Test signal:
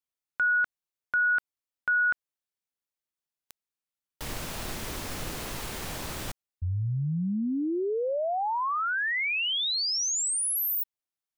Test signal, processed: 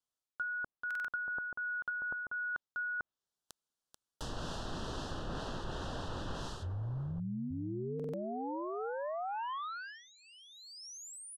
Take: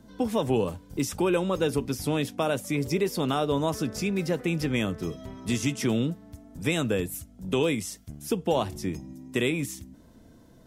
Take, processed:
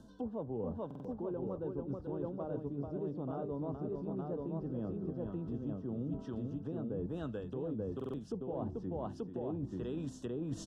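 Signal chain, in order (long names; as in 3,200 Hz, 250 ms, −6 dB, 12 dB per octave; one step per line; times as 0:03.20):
low-pass filter 9,900 Hz 12 dB per octave
on a send: multi-tap delay 437/883 ms −7/−3.5 dB
on the sum: treble cut that deepens with the level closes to 740 Hz, closed at −24 dBFS
Butterworth band-reject 2,200 Hz, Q 1.7
reversed playback
downward compressor 12 to 1, threshold −37 dBFS
reversed playback
buffer that repeats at 0:00.86/0:07.95, samples 2,048, times 3
level +1.5 dB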